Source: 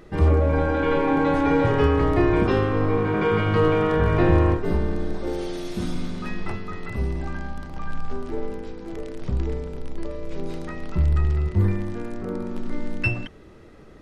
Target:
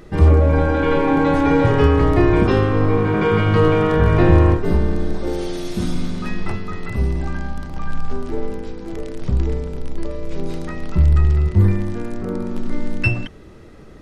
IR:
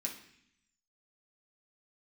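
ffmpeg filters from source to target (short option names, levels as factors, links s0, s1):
-af "bass=f=250:g=3,treble=f=4000:g=3,volume=1.5"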